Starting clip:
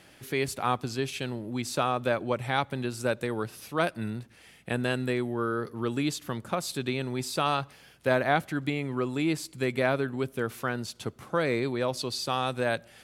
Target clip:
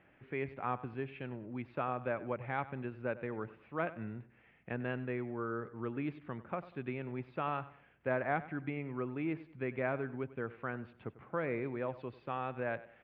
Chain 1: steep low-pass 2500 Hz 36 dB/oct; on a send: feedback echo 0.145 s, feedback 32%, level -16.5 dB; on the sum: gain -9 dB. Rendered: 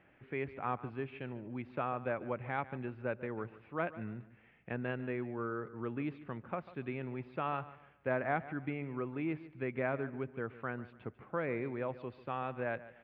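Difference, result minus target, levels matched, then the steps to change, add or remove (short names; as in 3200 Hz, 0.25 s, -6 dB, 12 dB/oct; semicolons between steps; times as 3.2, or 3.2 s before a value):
echo 49 ms late
change: feedback echo 96 ms, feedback 32%, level -16.5 dB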